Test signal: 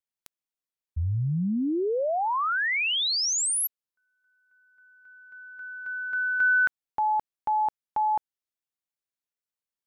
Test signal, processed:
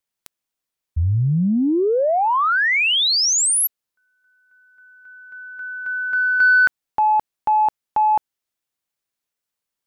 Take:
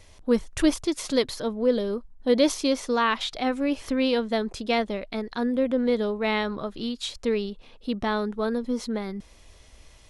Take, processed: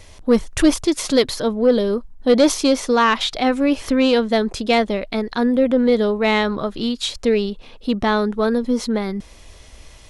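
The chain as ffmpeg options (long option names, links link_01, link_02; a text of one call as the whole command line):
ffmpeg -i in.wav -af "asoftclip=type=tanh:threshold=-13.5dB,volume=8.5dB" out.wav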